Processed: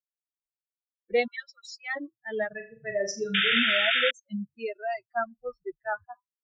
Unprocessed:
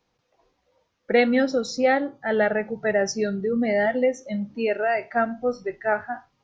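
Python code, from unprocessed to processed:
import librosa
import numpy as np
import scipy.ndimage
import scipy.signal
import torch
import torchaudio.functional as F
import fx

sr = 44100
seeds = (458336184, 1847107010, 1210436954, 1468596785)

y = fx.bin_expand(x, sr, power=3.0)
y = fx.steep_highpass(y, sr, hz=960.0, slope=48, at=(1.26, 1.95), fade=0.02)
y = fx.spec_paint(y, sr, seeds[0], shape='noise', start_s=3.34, length_s=0.77, low_hz=1300.0, high_hz=3700.0, level_db=-22.0)
y = fx.room_flutter(y, sr, wall_m=6.9, rt60_s=0.34, at=(2.49, 3.59))
y = y * 10.0 ** (-2.5 / 20.0)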